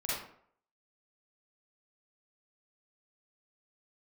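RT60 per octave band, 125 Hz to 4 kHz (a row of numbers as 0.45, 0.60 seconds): 0.55, 0.55, 0.60, 0.60, 0.50, 0.35 seconds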